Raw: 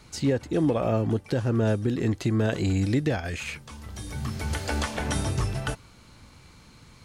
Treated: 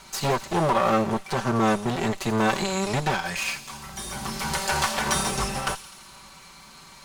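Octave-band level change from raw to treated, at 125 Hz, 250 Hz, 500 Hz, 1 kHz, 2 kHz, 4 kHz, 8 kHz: -5.0, -1.0, +1.5, +11.5, +6.5, +7.5, +9.0 dB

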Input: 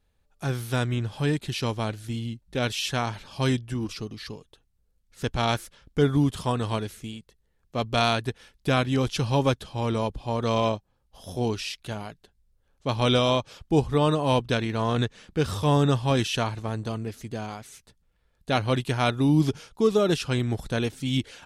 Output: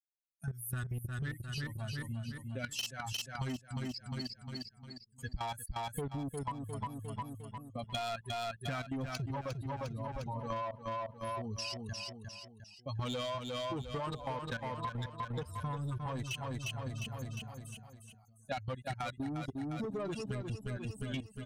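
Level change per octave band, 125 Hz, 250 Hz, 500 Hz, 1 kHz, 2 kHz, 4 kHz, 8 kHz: -12.5, -15.0, -15.5, -11.0, -11.5, -12.0, -8.0 dB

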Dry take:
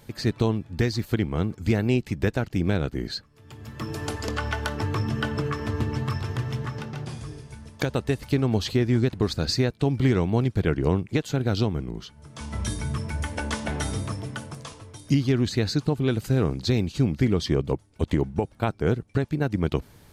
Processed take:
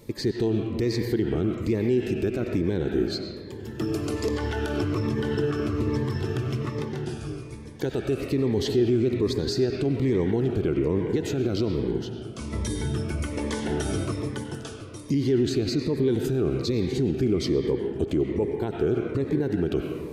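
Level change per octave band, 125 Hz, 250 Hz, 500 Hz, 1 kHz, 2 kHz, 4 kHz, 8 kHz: -3.5, +1.0, +3.0, -5.0, -5.0, -2.5, -1.5 dB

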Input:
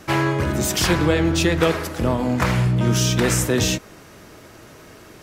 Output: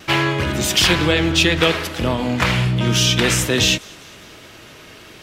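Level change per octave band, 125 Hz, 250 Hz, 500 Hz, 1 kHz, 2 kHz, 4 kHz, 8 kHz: 0.0, 0.0, +0.5, +1.5, +6.0, +9.0, +2.5 dB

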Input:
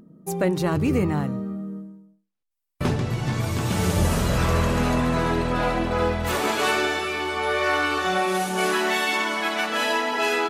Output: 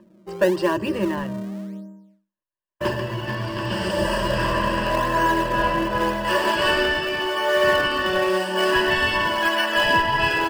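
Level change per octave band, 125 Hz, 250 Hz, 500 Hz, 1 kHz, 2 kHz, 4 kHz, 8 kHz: -6.0, -1.0, +3.0, +3.0, +3.5, +4.5, -5.5 dB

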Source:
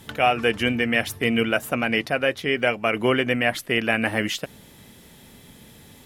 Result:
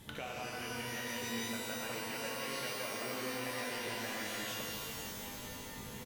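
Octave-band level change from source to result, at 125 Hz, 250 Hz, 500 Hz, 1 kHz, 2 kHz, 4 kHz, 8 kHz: -16.5, -18.5, -18.5, -16.0, -17.0, -12.5, -3.0 dB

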